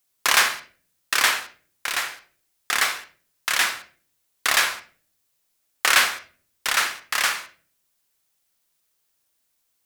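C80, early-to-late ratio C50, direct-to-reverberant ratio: 17.0 dB, 12.0 dB, 8.0 dB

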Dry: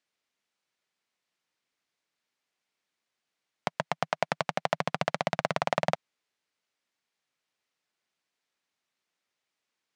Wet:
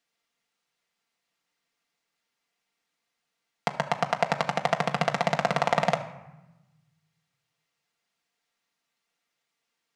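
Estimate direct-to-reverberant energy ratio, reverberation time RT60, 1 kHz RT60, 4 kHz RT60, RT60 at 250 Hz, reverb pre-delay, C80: 1.5 dB, 1.0 s, 1.0 s, 0.60 s, 1.4 s, 4 ms, 14.5 dB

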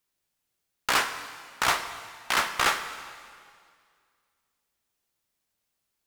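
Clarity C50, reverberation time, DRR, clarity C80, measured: 10.0 dB, 2.1 s, 9.0 dB, 11.0 dB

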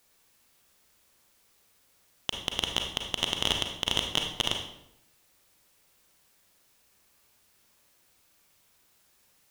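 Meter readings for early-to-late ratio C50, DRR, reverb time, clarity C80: 5.5 dB, 3.0 dB, 0.80 s, 8.5 dB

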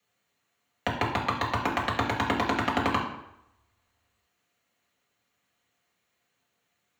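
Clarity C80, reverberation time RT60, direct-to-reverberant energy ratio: 9.0 dB, 0.85 s, -3.5 dB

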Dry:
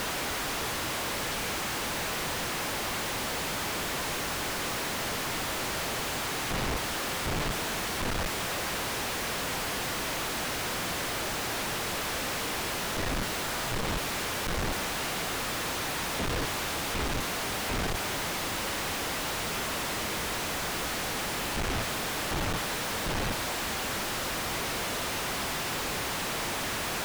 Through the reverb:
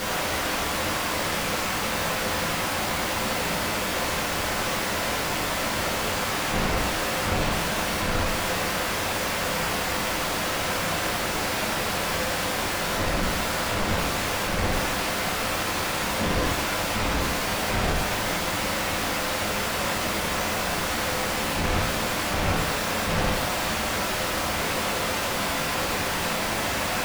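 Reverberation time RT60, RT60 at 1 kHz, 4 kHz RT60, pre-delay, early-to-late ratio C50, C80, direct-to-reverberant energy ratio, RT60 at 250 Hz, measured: 0.85 s, 0.85 s, 0.50 s, 6 ms, 2.0 dB, 6.0 dB, -5.0 dB, 0.95 s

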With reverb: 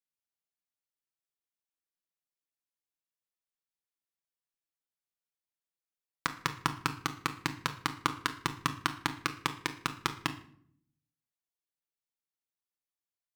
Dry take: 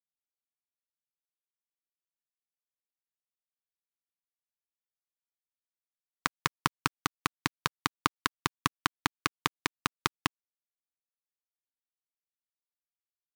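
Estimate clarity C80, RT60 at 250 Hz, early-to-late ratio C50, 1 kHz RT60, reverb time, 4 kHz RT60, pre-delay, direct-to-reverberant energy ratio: 17.0 dB, 0.95 s, 13.0 dB, 0.55 s, 0.60 s, 0.40 s, 6 ms, 6.0 dB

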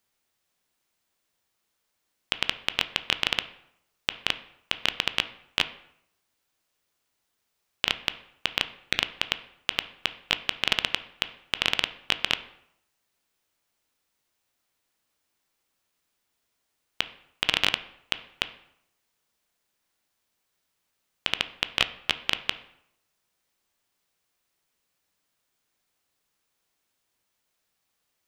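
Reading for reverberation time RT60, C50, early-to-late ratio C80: 0.75 s, 14.5 dB, 17.5 dB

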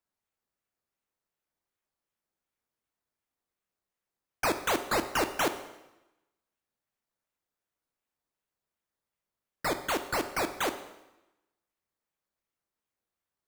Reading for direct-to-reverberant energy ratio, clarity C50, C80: 8.5 dB, 11.0 dB, 13.0 dB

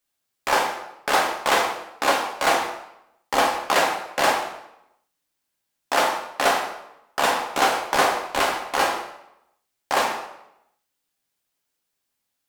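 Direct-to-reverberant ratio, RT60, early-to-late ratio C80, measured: 0.5 dB, 0.85 s, 8.0 dB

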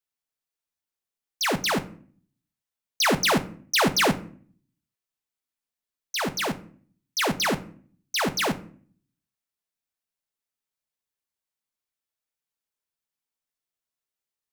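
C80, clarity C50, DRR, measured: 20.5 dB, 16.0 dB, 8.0 dB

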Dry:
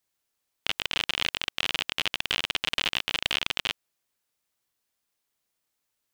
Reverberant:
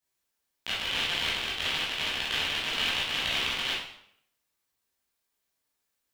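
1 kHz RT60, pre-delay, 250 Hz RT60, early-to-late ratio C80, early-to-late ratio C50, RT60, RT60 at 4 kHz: 0.70 s, 12 ms, 0.70 s, 6.0 dB, 2.0 dB, 0.70 s, 0.60 s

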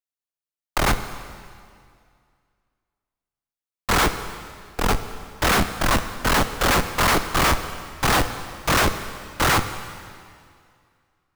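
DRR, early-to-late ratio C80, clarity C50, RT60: 9.0 dB, 11.0 dB, 10.5 dB, 2.2 s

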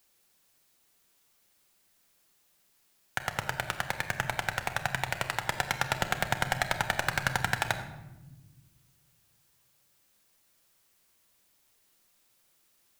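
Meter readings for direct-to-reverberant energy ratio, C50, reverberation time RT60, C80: 6.5 dB, 9.0 dB, no single decay rate, 10.5 dB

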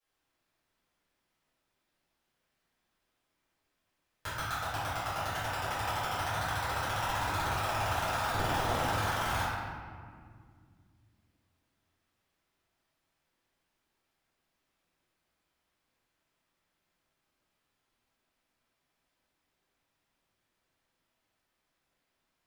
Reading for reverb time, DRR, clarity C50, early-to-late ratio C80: 2.1 s, -14.0 dB, -3.0 dB, 0.0 dB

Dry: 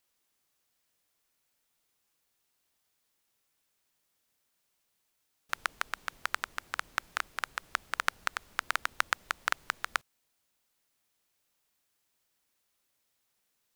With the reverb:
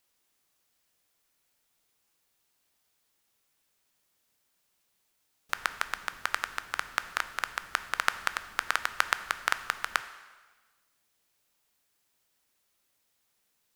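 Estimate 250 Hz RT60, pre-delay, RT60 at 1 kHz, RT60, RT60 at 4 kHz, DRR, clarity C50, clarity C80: 1.3 s, 5 ms, 1.3 s, 1.3 s, 1.3 s, 11.0 dB, 13.0 dB, 14.5 dB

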